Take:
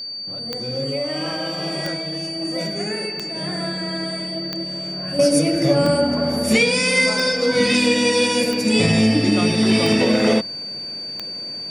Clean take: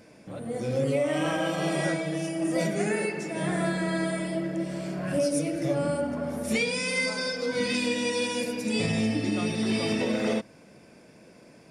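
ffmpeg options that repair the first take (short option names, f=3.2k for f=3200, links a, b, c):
-af "adeclick=t=4,bandreject=f=4.6k:w=30,asetnsamples=n=441:p=0,asendcmd='5.19 volume volume -10dB',volume=0dB"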